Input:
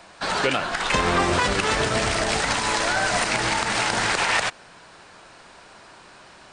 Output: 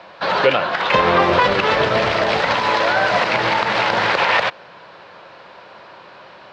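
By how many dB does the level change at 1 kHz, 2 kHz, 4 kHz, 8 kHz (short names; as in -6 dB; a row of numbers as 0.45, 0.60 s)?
+7.0, +4.5, +2.5, -13.0 dB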